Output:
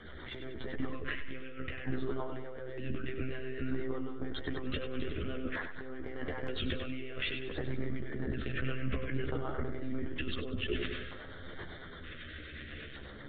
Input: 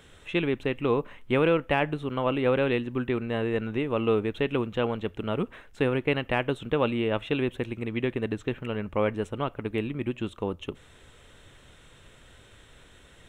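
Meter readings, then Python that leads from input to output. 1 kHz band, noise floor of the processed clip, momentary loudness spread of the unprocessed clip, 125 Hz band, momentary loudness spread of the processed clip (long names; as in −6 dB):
−14.0 dB, −47 dBFS, 8 LU, −7.5 dB, 9 LU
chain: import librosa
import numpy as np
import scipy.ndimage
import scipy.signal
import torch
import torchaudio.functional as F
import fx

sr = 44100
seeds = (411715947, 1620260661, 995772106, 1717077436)

p1 = fx.lpc_monotone(x, sr, seeds[0], pitch_hz=130.0, order=16)
p2 = fx.peak_eq(p1, sr, hz=1800.0, db=6.5, octaves=1.0)
p3 = fx.over_compress(p2, sr, threshold_db=-36.0, ratio=-1.0)
p4 = fx.peak_eq(p3, sr, hz=160.0, db=-7.5, octaves=0.31)
p5 = fx.hum_notches(p4, sr, base_hz=50, count=2)
p6 = fx.rotary(p5, sr, hz=8.0)
p7 = fx.chorus_voices(p6, sr, voices=2, hz=0.18, base_ms=13, depth_ms=1.6, mix_pct=40)
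p8 = fx.filter_lfo_notch(p7, sr, shape='square', hz=0.54, low_hz=880.0, high_hz=2600.0, q=1.2)
p9 = p8 + fx.echo_feedback(p8, sr, ms=97, feedback_pct=48, wet_db=-9.0, dry=0)
p10 = fx.sustainer(p9, sr, db_per_s=32.0)
y = F.gain(torch.from_numpy(p10), 2.0).numpy()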